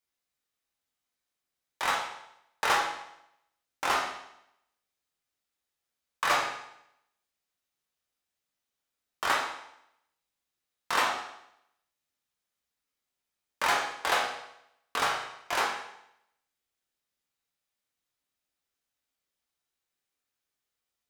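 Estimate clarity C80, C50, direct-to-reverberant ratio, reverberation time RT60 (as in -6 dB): 7.0 dB, 4.5 dB, -2.5 dB, 0.80 s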